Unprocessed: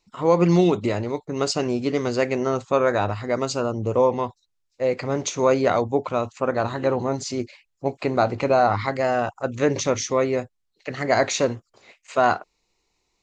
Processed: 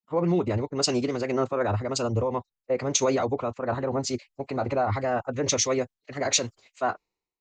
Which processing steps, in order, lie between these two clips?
time stretch by phase-locked vocoder 0.56×; peak limiter -17 dBFS, peak gain reduction 9 dB; three bands expanded up and down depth 100%

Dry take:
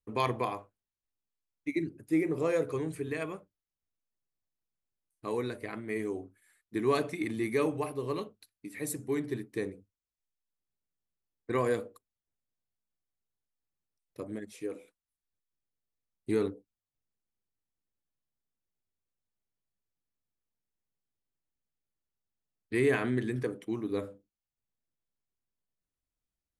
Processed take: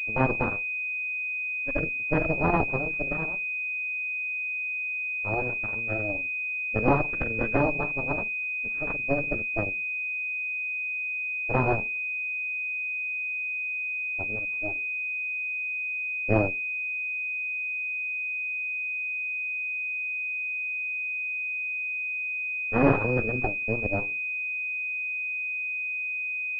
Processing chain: formant shift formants -3 st; Chebyshev shaper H 6 -7 dB, 7 -20 dB, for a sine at -13.5 dBFS; class-D stage that switches slowly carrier 2.5 kHz; trim +4 dB

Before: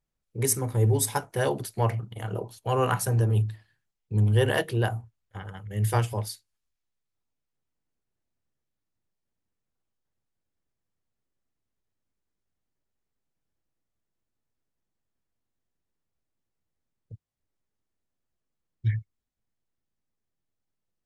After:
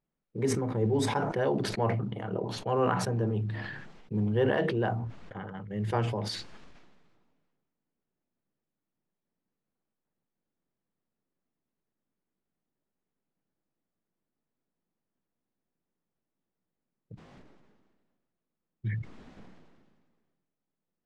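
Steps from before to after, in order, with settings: resonant low shelf 130 Hz -10 dB, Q 1.5; in parallel at -1.5 dB: compression 12:1, threshold -36 dBFS, peak gain reduction 17.5 dB; on the sum: short-mantissa float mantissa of 4-bit; tape spacing loss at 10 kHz 32 dB; decay stretcher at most 35 dB/s; trim -2 dB

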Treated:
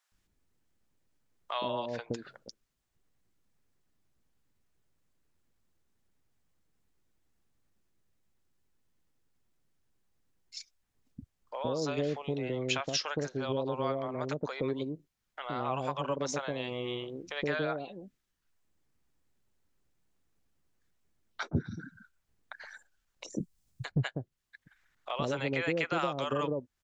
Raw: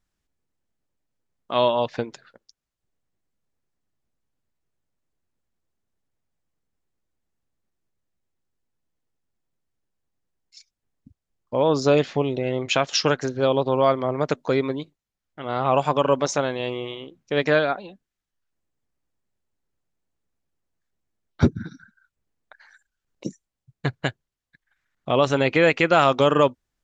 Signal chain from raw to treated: 23.28–23.92 s: tone controls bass +11 dB, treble +9 dB; compression 2.5:1, threshold -40 dBFS, peak gain reduction 18.5 dB; bands offset in time highs, lows 120 ms, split 630 Hz; trim +4.5 dB

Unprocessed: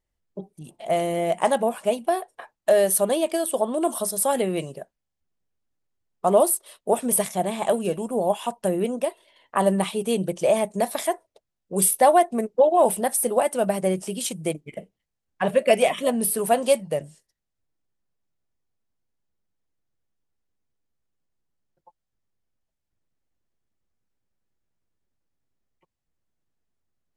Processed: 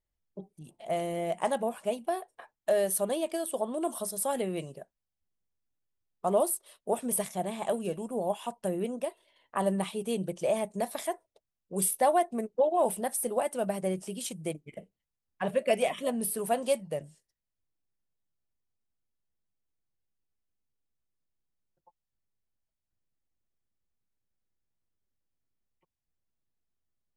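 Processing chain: bass shelf 160 Hz +3.5 dB; trim -8.5 dB

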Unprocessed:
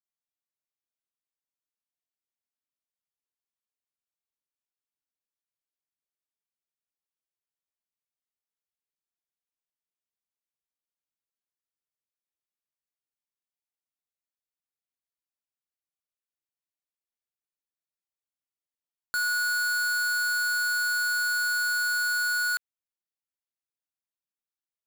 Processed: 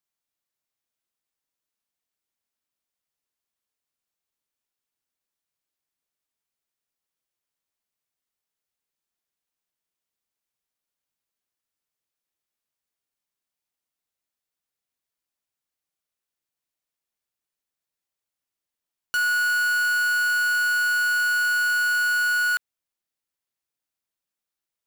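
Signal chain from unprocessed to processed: transformer saturation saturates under 840 Hz; trim +6.5 dB

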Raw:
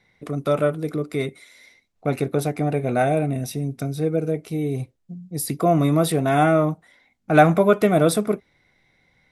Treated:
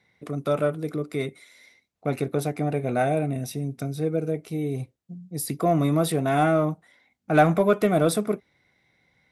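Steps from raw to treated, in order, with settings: high-pass 62 Hz; in parallel at -10.5 dB: hard clipper -12.5 dBFS, distortion -13 dB; on the sum: trim -5.5 dB

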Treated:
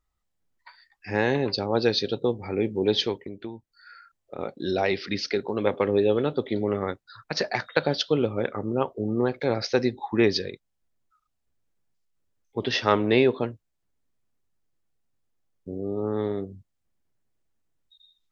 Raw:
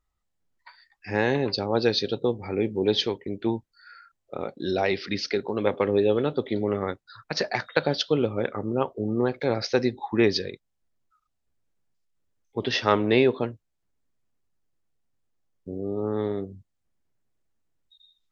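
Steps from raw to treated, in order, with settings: 3.24–4.38 s: compression 5:1, threshold -34 dBFS, peak gain reduction 13.5 dB

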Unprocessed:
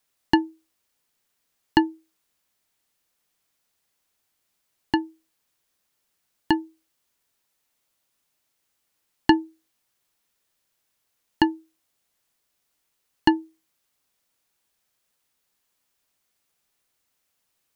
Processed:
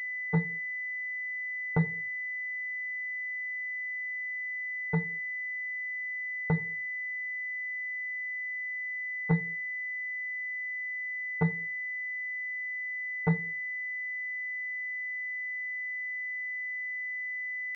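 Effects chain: saturation -14 dBFS, distortion -10 dB; pitch shift -11.5 st; reverberation RT60 0.40 s, pre-delay 3 ms, DRR 13 dB; class-D stage that switches slowly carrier 2 kHz; trim +2 dB

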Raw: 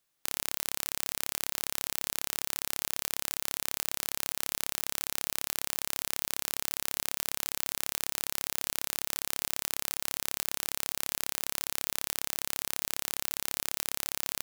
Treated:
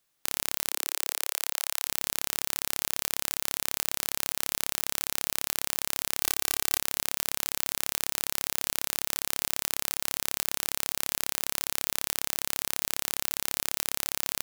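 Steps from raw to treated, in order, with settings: 0.70–1.86 s: high-pass 320 Hz -> 800 Hz 24 dB/octave; 6.20–6.79 s: comb 2.6 ms, depth 87%; trim +3 dB

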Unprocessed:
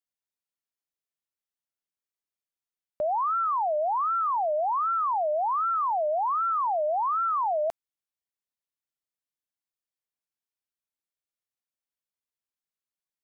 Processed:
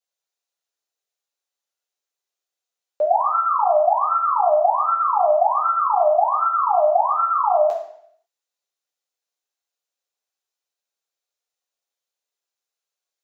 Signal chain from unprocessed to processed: high-pass 390 Hz 24 dB/octave; reverberation RT60 0.70 s, pre-delay 3 ms, DRR -3 dB

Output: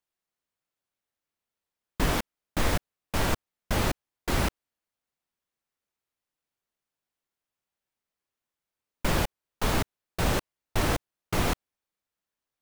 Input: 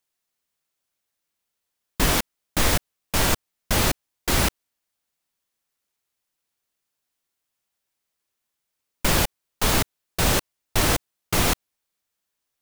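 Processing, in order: treble shelf 3 kHz -9 dB; trim -3.5 dB

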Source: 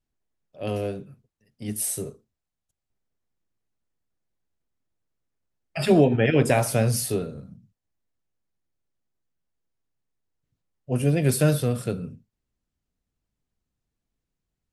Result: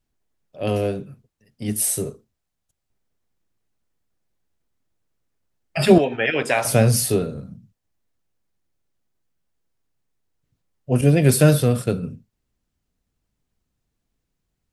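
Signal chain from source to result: 5.98–6.65 s: band-pass filter 2.2 kHz, Q 0.52; 11.01–12.03 s: expander -28 dBFS; trim +6 dB

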